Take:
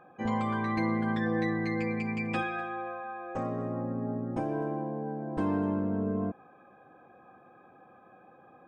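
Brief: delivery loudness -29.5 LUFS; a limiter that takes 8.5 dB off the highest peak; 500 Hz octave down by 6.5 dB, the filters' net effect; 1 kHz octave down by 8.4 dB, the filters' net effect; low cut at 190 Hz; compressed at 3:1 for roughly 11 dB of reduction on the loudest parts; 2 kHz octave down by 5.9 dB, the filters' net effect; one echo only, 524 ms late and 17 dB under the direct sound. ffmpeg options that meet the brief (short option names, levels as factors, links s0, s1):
-af "highpass=190,equalizer=f=500:t=o:g=-6,equalizer=f=1000:t=o:g=-8,equalizer=f=2000:t=o:g=-4.5,acompressor=threshold=0.00562:ratio=3,alimiter=level_in=6.68:limit=0.0631:level=0:latency=1,volume=0.15,aecho=1:1:524:0.141,volume=8.91"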